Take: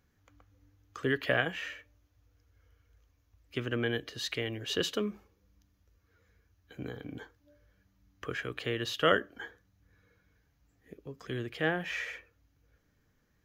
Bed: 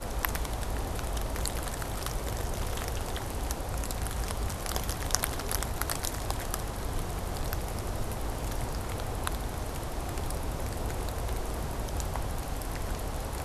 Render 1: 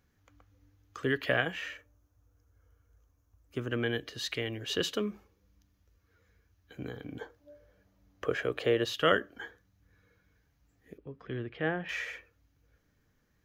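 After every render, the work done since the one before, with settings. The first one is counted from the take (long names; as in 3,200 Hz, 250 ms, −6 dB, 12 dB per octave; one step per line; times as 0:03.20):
0:01.77–0:03.70: flat-topped bell 3,000 Hz −9 dB
0:07.21–0:08.85: parametric band 560 Hz +11.5 dB 1.3 octaves
0:10.98–0:11.89: high-frequency loss of the air 350 metres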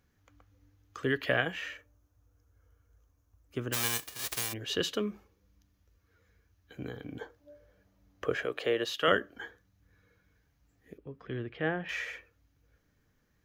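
0:03.72–0:04.52: spectral envelope flattened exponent 0.1
0:08.45–0:09.08: high-pass filter 370 Hz 6 dB per octave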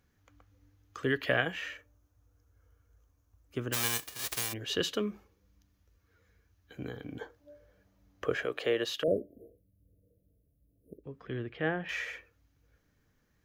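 0:09.03–0:11.04: linear-phase brick-wall band-stop 690–8,900 Hz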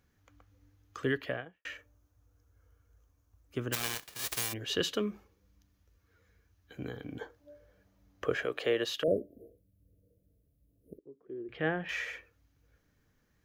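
0:00.99–0:01.65: fade out and dull
0:03.75–0:04.16: gap after every zero crossing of 0.057 ms
0:10.99–0:11.49: resonant band-pass 360 Hz, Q 4.5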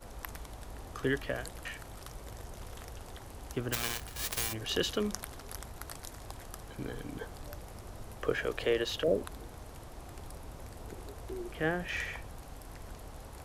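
mix in bed −12.5 dB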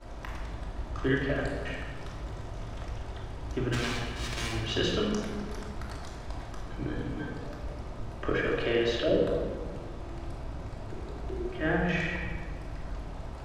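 high-frequency loss of the air 100 metres
rectangular room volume 1,400 cubic metres, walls mixed, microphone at 2.8 metres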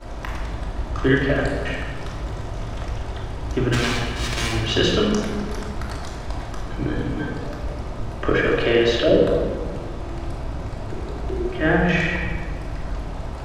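level +9.5 dB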